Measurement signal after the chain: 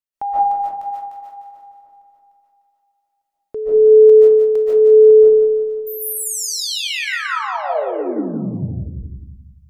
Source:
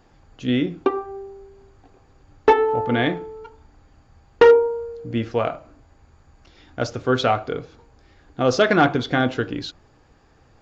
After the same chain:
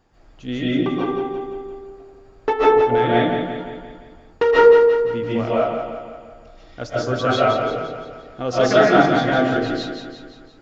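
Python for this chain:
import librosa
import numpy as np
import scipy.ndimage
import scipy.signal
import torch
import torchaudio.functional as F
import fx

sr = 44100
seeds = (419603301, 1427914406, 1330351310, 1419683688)

p1 = x + fx.echo_feedback(x, sr, ms=173, feedback_pct=53, wet_db=-7, dry=0)
p2 = fx.rev_freeverb(p1, sr, rt60_s=0.56, hf_ratio=0.35, predelay_ms=105, drr_db=-7.5)
y = p2 * 10.0 ** (-6.5 / 20.0)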